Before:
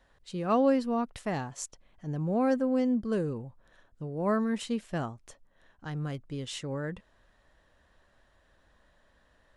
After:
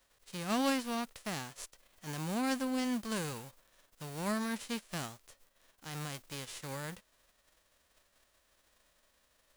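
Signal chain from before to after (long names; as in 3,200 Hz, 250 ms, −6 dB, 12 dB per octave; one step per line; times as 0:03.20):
spectral envelope flattened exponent 0.3
level −7 dB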